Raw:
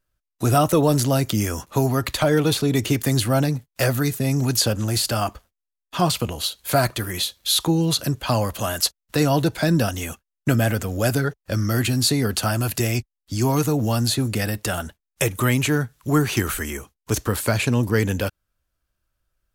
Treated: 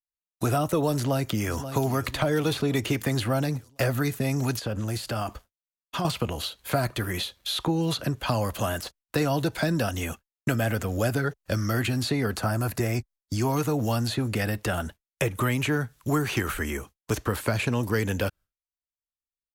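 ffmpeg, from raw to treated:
ffmpeg -i in.wav -filter_complex "[0:a]asplit=2[link_01][link_02];[link_02]afade=type=in:start_time=0.94:duration=0.01,afade=type=out:start_time=1.57:duration=0.01,aecho=0:1:530|1060|1590|2120|2650:0.158489|0.0871691|0.047943|0.0263687|0.0145028[link_03];[link_01][link_03]amix=inputs=2:normalize=0,asettb=1/sr,asplit=3[link_04][link_05][link_06];[link_04]atrim=end=4.594[link_07];[link_05]atrim=start=4.59:end=6.05,asetpts=PTS-STARTPTS,afade=type=in:duration=0.004:curve=qsin,afade=type=out:start_time=1.456:duration=0.004:curve=qsin,acompressor=threshold=-25dB:ratio=4:attack=3.2:release=140:knee=1:detection=peak[link_08];[link_06]atrim=start=6.046[link_09];[link_07][link_08]acrossfade=duration=0.004:curve1=hsin:curve2=qsin[link_10];[link_10][link_09]acrossfade=duration=0.004:curve1=qsin:curve2=hsin,asettb=1/sr,asplit=3[link_11][link_12][link_13];[link_11]atrim=end=8.504[link_14];[link_12]atrim=start=8.5:end=9.98,asetpts=PTS-STARTPTS,afade=type=in:duration=0.004:curve=qsin,afade=type=out:start_time=1.476:duration=0.004:curve=qsin,deesser=0.4[link_15];[link_13]atrim=start=9.976[link_16];[link_14][link_15]acrossfade=duration=0.004:curve1=hsin:curve2=qsin[link_17];[link_17][link_16]acrossfade=duration=0.004:curve1=qsin:curve2=hsin,asettb=1/sr,asplit=3[link_18][link_19][link_20];[link_18]atrim=end=12.344[link_21];[link_19]atrim=start=12.34:end=13.34,asetpts=PTS-STARTPTS,afade=type=in:duration=0.004:curve=qsin,afade=type=out:start_time=0.996:duration=0.004:curve=qsin,equalizer=frequency=3000:width_type=o:width=0.65:gain=-10[link_22];[link_20]atrim=start=13.336[link_23];[link_21][link_22]acrossfade=duration=0.004:curve1=hsin:curve2=qsin[link_24];[link_24][link_23]acrossfade=duration=0.004:curve1=qsin:curve2=hsin,agate=range=-33dB:threshold=-41dB:ratio=3:detection=peak,acrossover=split=470|3100[link_25][link_26][link_27];[link_25]acompressor=threshold=-25dB:ratio=4[link_28];[link_26]acompressor=threshold=-27dB:ratio=4[link_29];[link_27]acompressor=threshold=-39dB:ratio=4[link_30];[link_28][link_29][link_30]amix=inputs=3:normalize=0" out.wav

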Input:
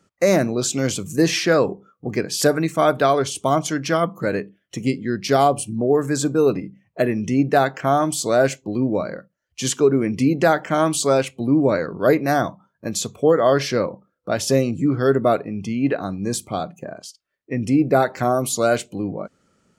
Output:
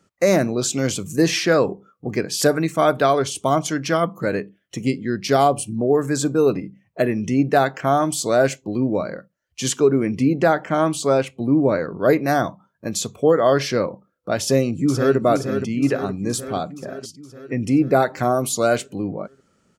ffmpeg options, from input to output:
ffmpeg -i in.wav -filter_complex "[0:a]asettb=1/sr,asplit=3[link_01][link_02][link_03];[link_01]atrim=end=10.184[link_04];[link_02]atrim=start=10.18:end=12.09,asetpts=PTS-STARTPTS,afade=type=in:duration=0.004:curve=qsin,afade=type=out:start_time=1.906:duration=0.004:curve=qsin,highshelf=frequency=3100:gain=-7[link_05];[link_03]atrim=start=12.086[link_06];[link_04][link_05]acrossfade=duration=0.004:curve1=hsin:curve2=qsin[link_07];[link_07][link_06]acrossfade=duration=0.004:curve1=qsin:curve2=hsin,asplit=2[link_08][link_09];[link_09]afade=type=in:start_time=14.41:duration=0.01,afade=type=out:start_time=15.17:duration=0.01,aecho=0:1:470|940|1410|1880|2350|2820|3290|3760|4230:0.398107|0.25877|0.1682|0.10933|0.0710646|0.046192|0.0300248|0.0195161|0.0126855[link_10];[link_08][link_10]amix=inputs=2:normalize=0" out.wav

